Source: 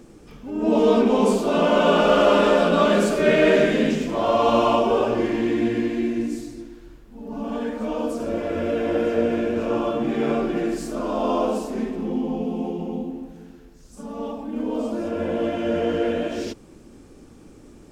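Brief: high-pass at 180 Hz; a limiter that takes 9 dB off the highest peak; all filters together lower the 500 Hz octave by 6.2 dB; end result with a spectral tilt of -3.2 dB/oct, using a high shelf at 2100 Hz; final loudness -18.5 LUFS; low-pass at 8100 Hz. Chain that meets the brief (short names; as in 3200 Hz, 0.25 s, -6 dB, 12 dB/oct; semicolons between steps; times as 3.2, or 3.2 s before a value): HPF 180 Hz; LPF 8100 Hz; bell 500 Hz -8 dB; high shelf 2100 Hz +4 dB; gain +9 dB; limiter -8 dBFS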